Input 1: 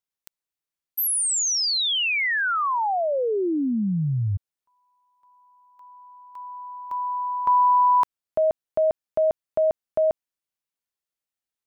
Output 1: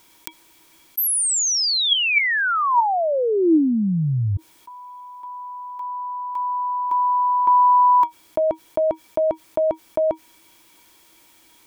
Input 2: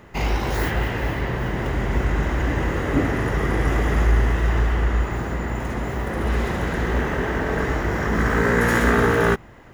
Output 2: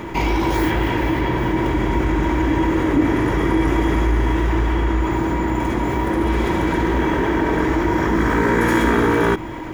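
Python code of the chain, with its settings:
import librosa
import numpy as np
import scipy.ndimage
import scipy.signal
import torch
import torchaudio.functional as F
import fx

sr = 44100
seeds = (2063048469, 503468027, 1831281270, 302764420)

y = fx.small_body(x, sr, hz=(320.0, 950.0, 2300.0, 3300.0), ring_ms=75, db=15)
y = fx.env_flatten(y, sr, amount_pct=50)
y = y * 10.0 ** (-4.5 / 20.0)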